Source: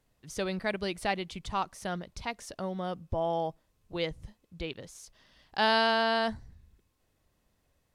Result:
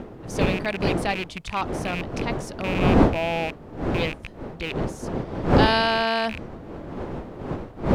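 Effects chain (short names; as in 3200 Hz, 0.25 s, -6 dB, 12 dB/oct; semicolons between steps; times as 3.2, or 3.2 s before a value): rattling part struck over -41 dBFS, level -24 dBFS; wind noise 430 Hz -30 dBFS; gain +4 dB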